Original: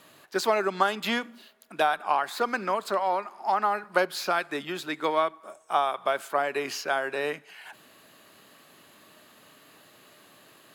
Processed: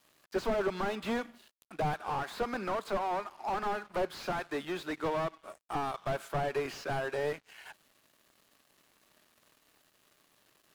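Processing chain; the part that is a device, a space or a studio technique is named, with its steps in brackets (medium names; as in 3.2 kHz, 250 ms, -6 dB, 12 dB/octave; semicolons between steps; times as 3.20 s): 5.61–6.10 s: peaking EQ 300 Hz -5 dB 2.5 oct; early transistor amplifier (crossover distortion -53 dBFS; slew-rate limiter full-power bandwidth 31 Hz); trim -1.5 dB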